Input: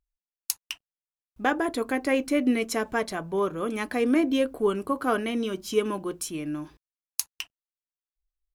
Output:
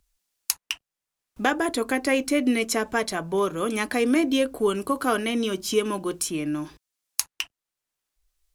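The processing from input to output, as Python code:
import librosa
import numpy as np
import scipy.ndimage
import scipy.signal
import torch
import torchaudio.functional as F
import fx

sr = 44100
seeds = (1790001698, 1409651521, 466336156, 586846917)

y = fx.peak_eq(x, sr, hz=7600.0, db=6.5, octaves=2.5)
y = fx.band_squash(y, sr, depth_pct=40)
y = F.gain(torch.from_numpy(y), 1.5).numpy()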